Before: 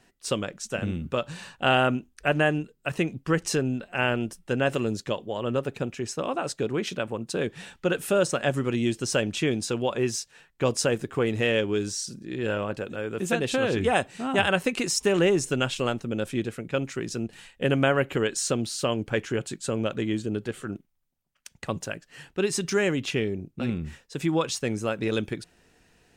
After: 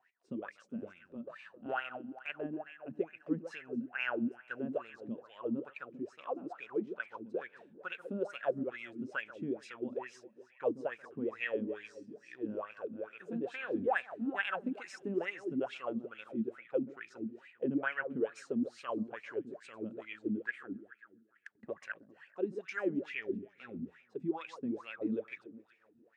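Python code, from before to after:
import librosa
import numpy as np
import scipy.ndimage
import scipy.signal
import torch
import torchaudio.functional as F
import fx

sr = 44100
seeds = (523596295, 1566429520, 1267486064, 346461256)

y = fx.peak_eq(x, sr, hz=1800.0, db=12.0, octaves=0.66, at=(20.4, 21.91))
y = fx.echo_alternate(y, sr, ms=134, hz=1400.0, feedback_pct=66, wet_db=-11.0)
y = fx.wah_lfo(y, sr, hz=2.3, low_hz=220.0, high_hz=2400.0, q=8.9)
y = fx.transient(y, sr, attack_db=-8, sustain_db=-3, at=(0.88, 2.61))
y = F.gain(torch.from_numpy(y), 1.0).numpy()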